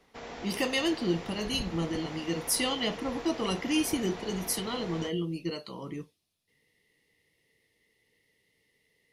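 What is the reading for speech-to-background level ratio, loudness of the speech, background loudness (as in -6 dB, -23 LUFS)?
10.0 dB, -31.5 LUFS, -41.5 LUFS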